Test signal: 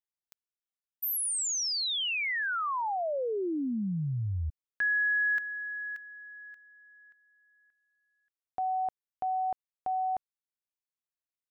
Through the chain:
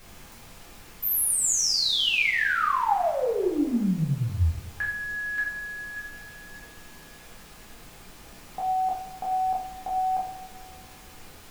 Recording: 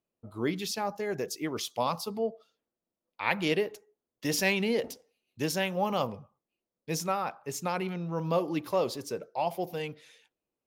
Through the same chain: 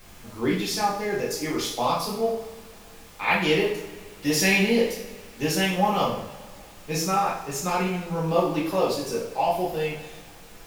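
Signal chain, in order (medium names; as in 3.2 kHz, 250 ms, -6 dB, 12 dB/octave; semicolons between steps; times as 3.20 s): added noise pink -54 dBFS; two-slope reverb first 0.59 s, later 2.3 s, from -19 dB, DRR -6 dB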